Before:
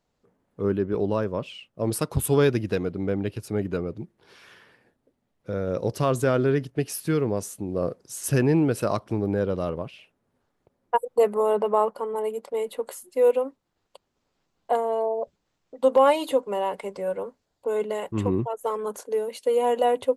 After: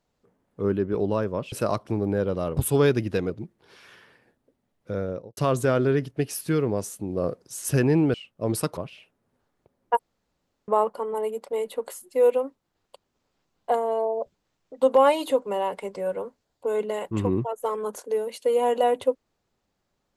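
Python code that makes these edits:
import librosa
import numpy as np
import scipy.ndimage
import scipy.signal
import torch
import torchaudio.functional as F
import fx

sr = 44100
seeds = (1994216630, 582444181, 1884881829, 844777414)

y = fx.studio_fade_out(x, sr, start_s=5.54, length_s=0.42)
y = fx.edit(y, sr, fx.swap(start_s=1.52, length_s=0.63, other_s=8.73, other_length_s=1.05),
    fx.cut(start_s=2.88, length_s=1.01),
    fx.room_tone_fill(start_s=11.0, length_s=0.69), tone=tone)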